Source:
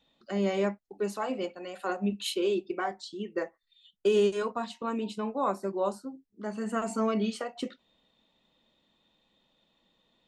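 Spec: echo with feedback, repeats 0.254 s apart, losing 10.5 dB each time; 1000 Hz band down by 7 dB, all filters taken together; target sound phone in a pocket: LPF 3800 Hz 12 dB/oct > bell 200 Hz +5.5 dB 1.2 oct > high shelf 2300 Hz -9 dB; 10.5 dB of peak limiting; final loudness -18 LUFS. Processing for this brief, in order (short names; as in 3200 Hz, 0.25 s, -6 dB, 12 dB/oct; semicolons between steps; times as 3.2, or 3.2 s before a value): bell 1000 Hz -8 dB; limiter -26.5 dBFS; LPF 3800 Hz 12 dB/oct; bell 200 Hz +5.5 dB 1.2 oct; high shelf 2300 Hz -9 dB; feedback echo 0.254 s, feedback 30%, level -10.5 dB; gain +16 dB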